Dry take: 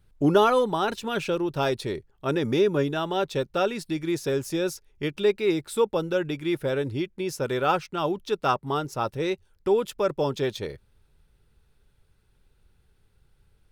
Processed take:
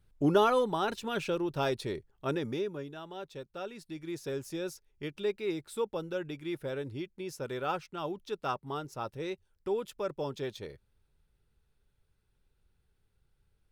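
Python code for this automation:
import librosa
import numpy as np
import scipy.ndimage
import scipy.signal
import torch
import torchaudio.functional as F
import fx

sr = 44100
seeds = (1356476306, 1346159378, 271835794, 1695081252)

y = fx.gain(x, sr, db=fx.line((2.27, -5.5), (2.81, -16.5), (3.54, -16.5), (4.31, -10.0)))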